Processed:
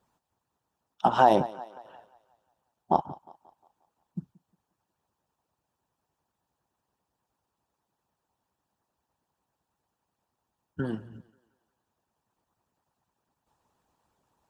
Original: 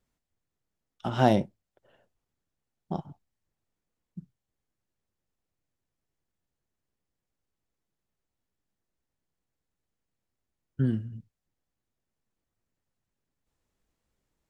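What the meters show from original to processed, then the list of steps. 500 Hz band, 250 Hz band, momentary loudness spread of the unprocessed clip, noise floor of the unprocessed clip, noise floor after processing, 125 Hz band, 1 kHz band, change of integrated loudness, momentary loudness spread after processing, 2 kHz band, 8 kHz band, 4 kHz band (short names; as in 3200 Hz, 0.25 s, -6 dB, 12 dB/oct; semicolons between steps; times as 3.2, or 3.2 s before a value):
+3.0 dB, -3.5 dB, 20 LU, under -85 dBFS, -84 dBFS, -8.0 dB, +8.5 dB, +2.5 dB, 23 LU, +3.0 dB, n/a, 0.0 dB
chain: in parallel at -1.5 dB: compressor, threshold -36 dBFS, peak gain reduction 19.5 dB; on the sum: low shelf 210 Hz +4.5 dB; notch 2100 Hz, Q 7.5; harmonic-percussive split harmonic -16 dB; HPF 130 Hz 6 dB/oct; bell 910 Hz +14 dB 0.91 oct; on a send: thinning echo 0.178 s, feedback 48%, high-pass 260 Hz, level -20.5 dB; on the sum: limiter -11.5 dBFS, peak gain reduction 7.5 dB; gain +3 dB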